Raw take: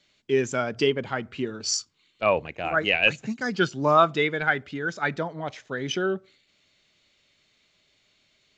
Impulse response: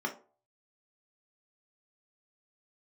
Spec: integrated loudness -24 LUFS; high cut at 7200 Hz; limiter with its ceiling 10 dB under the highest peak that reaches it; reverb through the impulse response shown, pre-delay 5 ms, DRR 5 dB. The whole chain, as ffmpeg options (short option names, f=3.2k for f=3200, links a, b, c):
-filter_complex "[0:a]lowpass=7.2k,alimiter=limit=-15.5dB:level=0:latency=1,asplit=2[a][b];[1:a]atrim=start_sample=2205,adelay=5[c];[b][c]afir=irnorm=-1:irlink=0,volume=-10.5dB[d];[a][d]amix=inputs=2:normalize=0,volume=3.5dB"